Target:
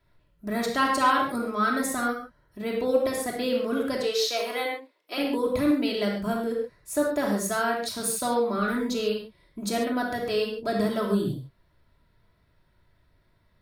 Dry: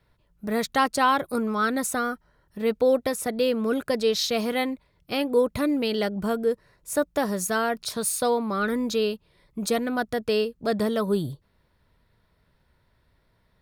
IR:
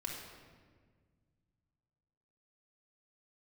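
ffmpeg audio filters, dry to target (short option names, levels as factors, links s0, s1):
-filter_complex "[0:a]asettb=1/sr,asplit=3[s0][s1][s2];[s0]atrim=end=3.974[s3];[s1]atrim=start=3.97:end=5.18,asetpts=PTS-STARTPTS,afade=t=in:d=0.004:c=qsin,afade=t=out:st=1.206:d=0.004:c=qsin,highpass=f=370:w=0.5412,highpass=f=370:w=1.3066[s4];[s2]atrim=start=5.176[s5];[s3][s4]acrossfade=d=0.004:c1=hsin:c2=qsin[s6];[s6][s5]acrossfade=d=0.004:c1=qsin:c2=hsin[s7];[1:a]atrim=start_sample=2205,afade=t=out:st=0.2:d=0.01,atrim=end_sample=9261[s8];[s7][s8]afir=irnorm=-1:irlink=0"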